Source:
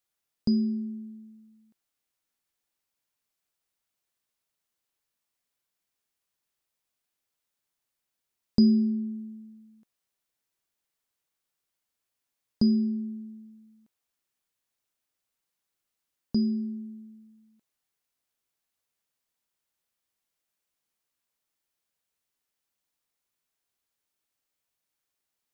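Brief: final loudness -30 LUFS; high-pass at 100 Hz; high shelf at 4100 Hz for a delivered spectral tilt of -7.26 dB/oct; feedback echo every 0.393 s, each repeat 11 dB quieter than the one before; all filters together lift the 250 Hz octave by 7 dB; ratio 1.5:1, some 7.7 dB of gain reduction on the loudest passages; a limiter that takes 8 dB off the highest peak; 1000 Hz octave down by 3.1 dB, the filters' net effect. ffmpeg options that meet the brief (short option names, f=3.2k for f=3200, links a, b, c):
-af "highpass=100,equalizer=f=250:t=o:g=8.5,equalizer=f=1k:t=o:g=-5.5,highshelf=f=4.1k:g=6,acompressor=threshold=-31dB:ratio=1.5,alimiter=limit=-19.5dB:level=0:latency=1,aecho=1:1:393|786|1179:0.282|0.0789|0.0221,volume=-1dB"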